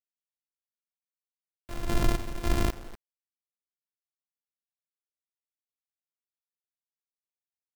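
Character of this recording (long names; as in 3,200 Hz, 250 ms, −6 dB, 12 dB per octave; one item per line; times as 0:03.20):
a buzz of ramps at a fixed pitch in blocks of 128 samples
sample-and-hold tremolo 3.7 Hz, depth 95%
a quantiser's noise floor 8 bits, dither none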